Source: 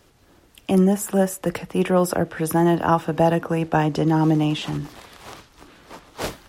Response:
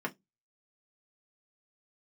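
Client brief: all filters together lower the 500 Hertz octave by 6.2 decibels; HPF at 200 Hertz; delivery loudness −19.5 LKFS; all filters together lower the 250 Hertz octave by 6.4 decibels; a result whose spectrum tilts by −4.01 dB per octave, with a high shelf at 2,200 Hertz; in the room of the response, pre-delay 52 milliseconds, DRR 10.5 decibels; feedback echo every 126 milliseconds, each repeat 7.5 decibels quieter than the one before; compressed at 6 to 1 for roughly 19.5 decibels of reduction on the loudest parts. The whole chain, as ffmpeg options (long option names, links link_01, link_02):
-filter_complex "[0:a]highpass=200,equalizer=frequency=250:width_type=o:gain=-4,equalizer=frequency=500:width_type=o:gain=-7.5,highshelf=frequency=2200:gain=6.5,acompressor=threshold=-38dB:ratio=6,aecho=1:1:126|252|378|504|630:0.422|0.177|0.0744|0.0312|0.0131,asplit=2[link_01][link_02];[1:a]atrim=start_sample=2205,adelay=52[link_03];[link_02][link_03]afir=irnorm=-1:irlink=0,volume=-15.5dB[link_04];[link_01][link_04]amix=inputs=2:normalize=0,volume=20dB"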